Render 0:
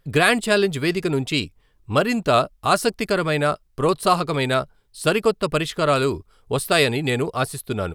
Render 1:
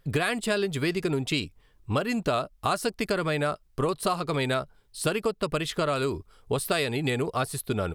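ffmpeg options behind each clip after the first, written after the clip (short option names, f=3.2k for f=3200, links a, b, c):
-af "acompressor=threshold=-23dB:ratio=6"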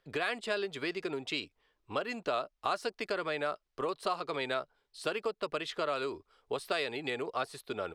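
-filter_complex "[0:a]acrossover=split=310 6200:gain=0.141 1 0.158[a][b][c];[a][b][c]amix=inputs=3:normalize=0,volume=-5.5dB"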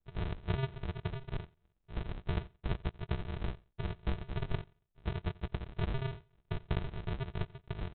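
-af "aresample=8000,acrusher=samples=30:mix=1:aa=0.000001,aresample=44100,aecho=1:1:88|176:0.0708|0.0149,volume=-1.5dB"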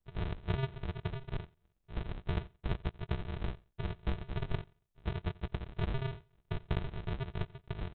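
-af "aeval=exprs='0.0944*(cos(1*acos(clip(val(0)/0.0944,-1,1)))-cos(1*PI/2))+0.00119*(cos(6*acos(clip(val(0)/0.0944,-1,1)))-cos(6*PI/2))':c=same"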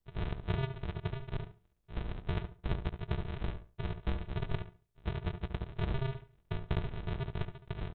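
-filter_complex "[0:a]asplit=2[a][b];[b]adelay=71,lowpass=f=1.8k:p=1,volume=-8dB,asplit=2[c][d];[d]adelay=71,lowpass=f=1.8k:p=1,volume=0.22,asplit=2[e][f];[f]adelay=71,lowpass=f=1.8k:p=1,volume=0.22[g];[a][c][e][g]amix=inputs=4:normalize=0"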